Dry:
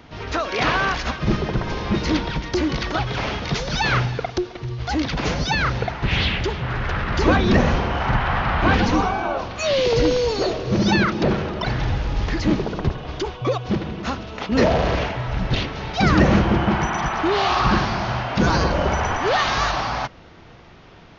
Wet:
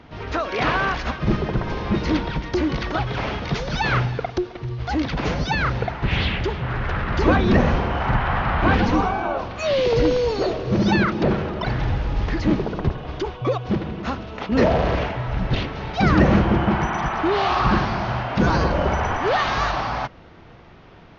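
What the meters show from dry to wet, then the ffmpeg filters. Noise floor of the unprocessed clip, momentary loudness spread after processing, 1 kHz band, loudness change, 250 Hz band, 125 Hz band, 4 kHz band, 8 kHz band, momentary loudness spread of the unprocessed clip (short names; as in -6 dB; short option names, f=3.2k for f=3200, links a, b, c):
-45 dBFS, 8 LU, -0.5 dB, -0.5 dB, 0.0 dB, 0.0 dB, -4.5 dB, n/a, 8 LU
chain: -af "lowpass=f=2.7k:p=1"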